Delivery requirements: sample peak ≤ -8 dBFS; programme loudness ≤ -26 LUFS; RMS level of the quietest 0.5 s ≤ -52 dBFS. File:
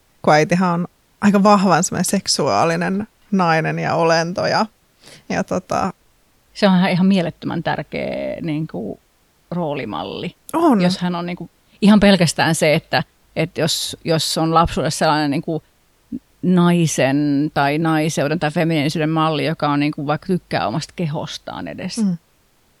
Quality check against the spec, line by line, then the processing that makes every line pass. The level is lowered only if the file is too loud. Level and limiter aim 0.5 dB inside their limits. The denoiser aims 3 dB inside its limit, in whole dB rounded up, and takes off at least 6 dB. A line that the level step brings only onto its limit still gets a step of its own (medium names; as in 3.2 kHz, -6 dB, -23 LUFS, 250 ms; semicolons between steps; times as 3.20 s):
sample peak -1.5 dBFS: fail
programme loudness -18.0 LUFS: fail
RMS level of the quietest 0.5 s -58 dBFS: pass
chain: trim -8.5 dB